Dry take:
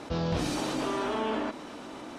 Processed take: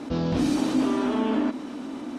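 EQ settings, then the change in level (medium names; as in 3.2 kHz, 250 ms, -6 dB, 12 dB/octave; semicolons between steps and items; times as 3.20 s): peaking EQ 260 Hz +14 dB 0.64 oct; 0.0 dB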